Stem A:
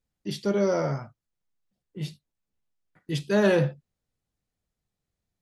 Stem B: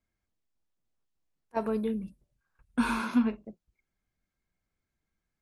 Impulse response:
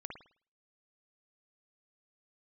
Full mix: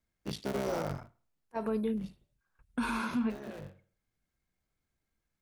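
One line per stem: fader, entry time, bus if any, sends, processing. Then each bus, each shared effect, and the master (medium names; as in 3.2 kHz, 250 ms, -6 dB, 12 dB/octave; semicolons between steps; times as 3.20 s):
-5.0 dB, 0.00 s, send -16 dB, cycle switcher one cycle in 3, muted; peak limiter -20.5 dBFS, peak gain reduction 10 dB; auto duck -16 dB, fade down 0.65 s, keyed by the second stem
-1.0 dB, 0.00 s, no send, none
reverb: on, pre-delay 52 ms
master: peak limiter -24 dBFS, peak gain reduction 8 dB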